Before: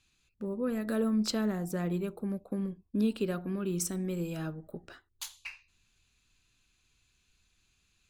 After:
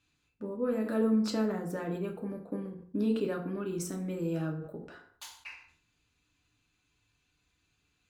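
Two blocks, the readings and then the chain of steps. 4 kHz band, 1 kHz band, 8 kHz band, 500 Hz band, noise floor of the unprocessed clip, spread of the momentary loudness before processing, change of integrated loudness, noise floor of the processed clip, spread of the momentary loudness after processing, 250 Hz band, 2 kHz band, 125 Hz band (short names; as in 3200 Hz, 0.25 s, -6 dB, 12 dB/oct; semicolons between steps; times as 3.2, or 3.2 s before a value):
-4.5 dB, +1.5 dB, -6.5 dB, +2.0 dB, -73 dBFS, 14 LU, +0.5 dB, -76 dBFS, 19 LU, 0.0 dB, -1.0 dB, -1.5 dB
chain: HPF 110 Hz 6 dB/oct; high shelf 2600 Hz -10 dB; FDN reverb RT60 0.53 s, low-frequency decay 0.95×, high-frequency decay 0.7×, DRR 1 dB; sustainer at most 100 dB/s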